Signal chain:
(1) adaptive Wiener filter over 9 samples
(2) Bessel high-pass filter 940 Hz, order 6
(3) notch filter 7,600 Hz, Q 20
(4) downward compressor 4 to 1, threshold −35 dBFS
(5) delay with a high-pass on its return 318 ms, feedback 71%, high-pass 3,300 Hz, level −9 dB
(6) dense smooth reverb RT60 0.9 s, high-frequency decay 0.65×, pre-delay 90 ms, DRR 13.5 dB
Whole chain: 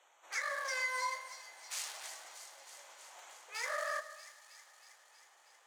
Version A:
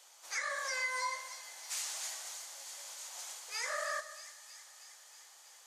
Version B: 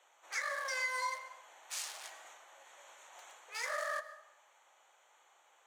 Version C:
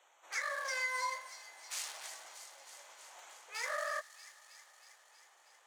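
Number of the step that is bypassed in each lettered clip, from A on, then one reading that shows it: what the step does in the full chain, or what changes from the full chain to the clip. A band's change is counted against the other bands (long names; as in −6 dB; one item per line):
1, 8 kHz band +5.5 dB
5, echo-to-direct ratio −11.5 dB to −13.5 dB
6, echo-to-direct ratio −11.5 dB to −16.5 dB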